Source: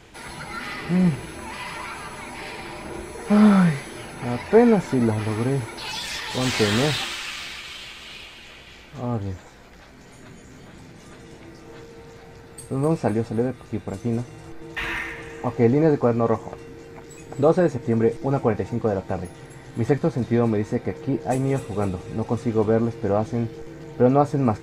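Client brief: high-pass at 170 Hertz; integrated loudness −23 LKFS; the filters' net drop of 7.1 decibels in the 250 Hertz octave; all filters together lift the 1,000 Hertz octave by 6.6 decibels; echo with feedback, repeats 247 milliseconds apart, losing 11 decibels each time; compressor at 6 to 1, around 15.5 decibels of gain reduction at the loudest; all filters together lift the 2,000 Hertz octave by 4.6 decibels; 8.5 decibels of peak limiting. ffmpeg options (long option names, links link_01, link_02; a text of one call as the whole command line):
ffmpeg -i in.wav -af "highpass=170,equalizer=frequency=250:width_type=o:gain=-8,equalizer=frequency=1000:width_type=o:gain=9,equalizer=frequency=2000:width_type=o:gain=3,acompressor=threshold=-27dB:ratio=6,alimiter=limit=-22.5dB:level=0:latency=1,aecho=1:1:247|494|741:0.282|0.0789|0.0221,volume=11dB" out.wav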